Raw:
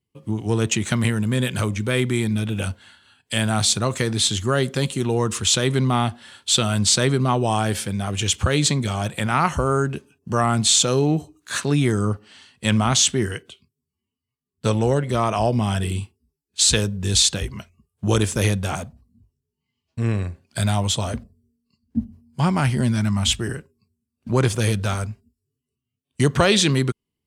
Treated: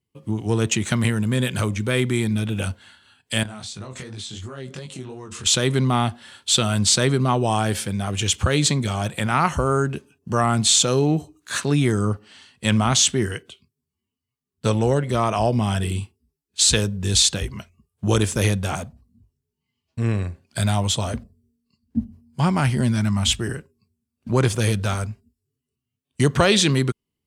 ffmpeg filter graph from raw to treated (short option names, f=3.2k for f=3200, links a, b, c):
-filter_complex "[0:a]asettb=1/sr,asplit=3[a][b][c];[a]atrim=end=3.434[d];[b]atrim=start=3.43:end=5.46,asetpts=PTS-STARTPTS,afade=t=in:d=0.004:c=qsin,afade=t=out:st=2.026:d=0.004:c=qsin,lowpass=8k,acompressor=threshold=-27dB:ratio=12:attack=3.2:release=140:knee=1:detection=peak,flanger=delay=19.5:depth=4.2:speed=2.8[e];[c]atrim=start=5.456[f];[d][e]acrossfade=d=0.004:c1=hsin:c2=qsin[g];[g][f]acrossfade=d=0.004:c1=qsin:c2=hsin"